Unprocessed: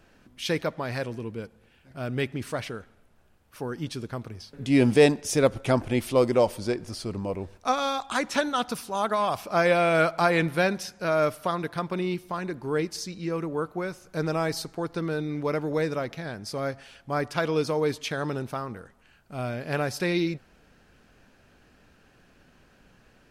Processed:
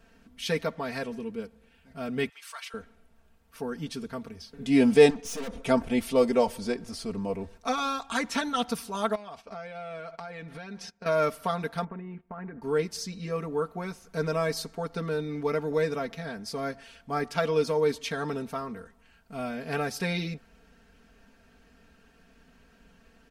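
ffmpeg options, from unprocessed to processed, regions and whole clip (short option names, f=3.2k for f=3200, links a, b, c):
-filter_complex "[0:a]asettb=1/sr,asplit=3[a][b][c];[a]atrim=end=2.294[d];[b]atrim=start=2.29:end=2.74,asetpts=PTS-STARTPTS,afade=t=in:d=0.004:c=qsin,afade=t=out:st=0.446:d=0.004:c=qsin,highpass=f=1.1k:w=0.5412,highpass=f=1.1k:w=1.3066,equalizer=f=1.8k:w=2.5:g=-5[e];[c]atrim=start=2.736[f];[d][e]acrossfade=d=0.004:c1=hsin:c2=qsin[g];[g][f]acrossfade=d=0.004:c1=qsin:c2=hsin,asettb=1/sr,asplit=3[h][i][j];[h]atrim=end=5.104[k];[i]atrim=start=5.1:end=5.63,asetpts=PTS-STARTPTS,afade=t=in:d=0.004:c=qsin,afade=t=out:st=0.526:d=0.004:c=qsin,lowpass=9.6k,aecho=1:1:4.1:0.86,atrim=end_sample=23373,aeval=exprs='(tanh(44.7*val(0)+0.5)-tanh(0.5))/44.7':c=same[l];[j]atrim=start=5.626[m];[k][l]acrossfade=d=0.004:c1=hsin:c2=qsin[n];[n][m]acrossfade=d=0.004:c1=qsin:c2=hsin,asettb=1/sr,asplit=3[o][p][q];[o]atrim=end=9.154[r];[p]atrim=start=9.15:end=11.06,asetpts=PTS-STARTPTS,afade=t=in:d=0.004:c=qsin,afade=t=out:st=1.906:d=0.004:c=qsin,agate=range=-18dB:threshold=-39dB:ratio=16:release=100:detection=peak,lowpass=6.3k,acompressor=threshold=-35dB:ratio=16:attack=3.2:release=140:knee=1:detection=peak[s];[q]atrim=start=11.056[t];[r][s]acrossfade=d=0.004:c1=hsin:c2=qsin[u];[u][t]acrossfade=d=0.004:c1=qsin:c2=hsin,asettb=1/sr,asplit=3[v][w][x];[v]atrim=end=11.844[y];[w]atrim=start=11.84:end=12.62,asetpts=PTS-STARTPTS,afade=t=in:d=0.004:c=qsin,afade=t=out:st=0.776:d=0.004:c=qsin,lowpass=f=1.9k:w=0.5412,lowpass=f=1.9k:w=1.3066,acompressor=threshold=-33dB:ratio=10:attack=3.2:release=140:knee=1:detection=peak,agate=range=-15dB:threshold=-46dB:ratio=16:release=100:detection=peak[z];[x]atrim=start=12.616[aa];[y][z]acrossfade=d=0.004:c1=hsin:c2=qsin[ab];[ab][aa]acrossfade=d=0.004:c1=qsin:c2=hsin,equalizer=f=68:t=o:w=1.4:g=4.5,aecho=1:1:4.4:0.9,volume=-4dB"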